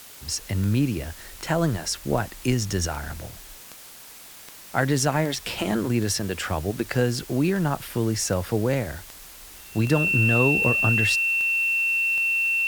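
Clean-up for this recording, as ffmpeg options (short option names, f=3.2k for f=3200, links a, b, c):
-af "adeclick=t=4,bandreject=f=2.7k:w=30,afwtdn=0.0063"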